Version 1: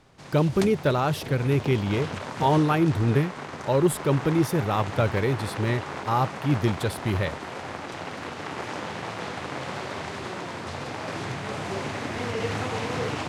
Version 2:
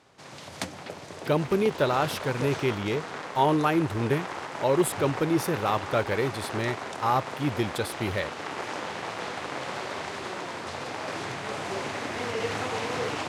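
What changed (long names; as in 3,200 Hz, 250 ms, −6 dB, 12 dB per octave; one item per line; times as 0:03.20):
speech: entry +0.95 s
master: add bass and treble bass −8 dB, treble +1 dB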